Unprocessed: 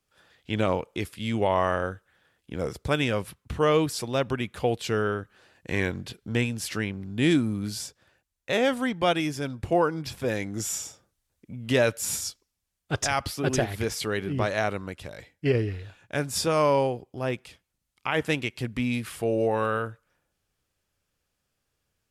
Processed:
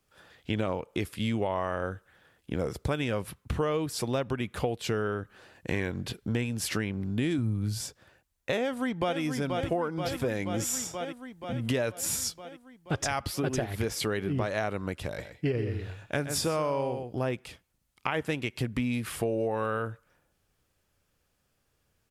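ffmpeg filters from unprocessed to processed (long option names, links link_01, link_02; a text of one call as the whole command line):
ffmpeg -i in.wav -filter_complex "[0:a]asettb=1/sr,asplit=3[link_01][link_02][link_03];[link_01]atrim=end=7.384[link_04];[link_02]atrim=start=7.38:end=7.81,asetpts=PTS-STARTPTS,afade=type=in:duration=0.004:curve=qsin,afade=type=out:start_time=0.426:duration=0.004:curve=qsin,equalizer=frequency=110:width_type=o:width=0.77:gain=11[link_05];[link_03]atrim=start=7.806[link_06];[link_04][link_05]acrossfade=duration=0.004:curve1=hsin:curve2=qsin[link_07];[link_07][link_06]acrossfade=duration=0.004:curve1=qsin:curve2=hsin,asplit=2[link_08][link_09];[link_09]afade=type=in:start_time=8.6:duration=0.01,afade=type=out:start_time=9.2:duration=0.01,aecho=0:1:480|960|1440|1920|2400|2880|3360|3840|4320|4800|5280:0.354813|0.248369|0.173859|0.121701|0.0851907|0.0596335|0.0417434|0.0292204|0.0204543|0.014318|0.0100226[link_10];[link_08][link_10]amix=inputs=2:normalize=0,asettb=1/sr,asplit=3[link_11][link_12][link_13];[link_11]atrim=end=15.064[link_14];[link_12]atrim=start=15.06:end=17.18,asetpts=PTS-STARTPTS,afade=type=in:duration=0.004:curve=qsin,afade=type=out:start_time=2.116:duration=0.004:curve=qsin,aecho=1:1:122:0.316,atrim=end_sample=93492[link_15];[link_13]atrim=start=17.176[link_16];[link_14][link_15]acrossfade=duration=0.004:curve1=hsin:curve2=qsin[link_17];[link_17][link_16]acrossfade=duration=0.004:curve1=qsin:curve2=hsin,equalizer=frequency=5000:width=0.37:gain=-3.5,acompressor=threshold=-32dB:ratio=6,volume=5.5dB" out.wav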